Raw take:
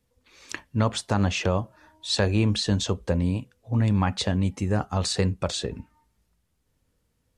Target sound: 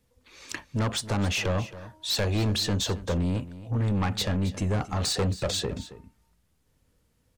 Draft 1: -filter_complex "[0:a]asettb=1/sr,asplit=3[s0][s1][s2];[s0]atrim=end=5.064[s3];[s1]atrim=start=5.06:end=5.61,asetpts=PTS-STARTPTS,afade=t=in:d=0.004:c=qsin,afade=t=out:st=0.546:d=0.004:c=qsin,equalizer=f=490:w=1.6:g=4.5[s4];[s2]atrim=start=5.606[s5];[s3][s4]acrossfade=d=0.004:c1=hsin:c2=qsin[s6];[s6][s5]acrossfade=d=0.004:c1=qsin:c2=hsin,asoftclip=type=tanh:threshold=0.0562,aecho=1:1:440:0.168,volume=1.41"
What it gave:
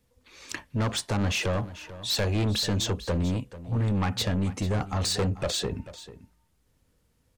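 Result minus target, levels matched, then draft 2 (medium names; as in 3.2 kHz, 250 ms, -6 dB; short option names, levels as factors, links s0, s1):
echo 168 ms late
-filter_complex "[0:a]asettb=1/sr,asplit=3[s0][s1][s2];[s0]atrim=end=5.064[s3];[s1]atrim=start=5.06:end=5.61,asetpts=PTS-STARTPTS,afade=t=in:d=0.004:c=qsin,afade=t=out:st=0.546:d=0.004:c=qsin,equalizer=f=490:w=1.6:g=4.5[s4];[s2]atrim=start=5.606[s5];[s3][s4]acrossfade=d=0.004:c1=hsin:c2=qsin[s6];[s6][s5]acrossfade=d=0.004:c1=qsin:c2=hsin,asoftclip=type=tanh:threshold=0.0562,aecho=1:1:272:0.168,volume=1.41"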